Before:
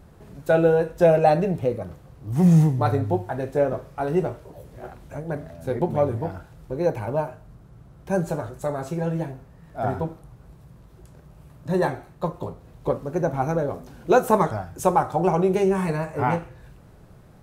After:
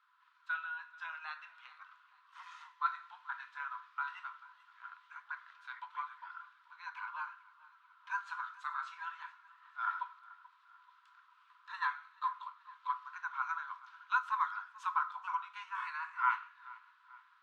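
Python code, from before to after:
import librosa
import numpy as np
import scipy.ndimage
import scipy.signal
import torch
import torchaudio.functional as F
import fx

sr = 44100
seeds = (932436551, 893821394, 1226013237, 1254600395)

y = scipy.signal.sosfilt(scipy.signal.butter(2, 2100.0, 'lowpass', fs=sr, output='sos'), x)
y = fx.rider(y, sr, range_db=4, speed_s=0.5)
y = scipy.signal.sosfilt(scipy.signal.cheby1(6, 9, 970.0, 'highpass', fs=sr, output='sos'), y)
y = fx.echo_feedback(y, sr, ms=434, feedback_pct=47, wet_db=-20.5)
y = y * 10.0 ** (2.5 / 20.0)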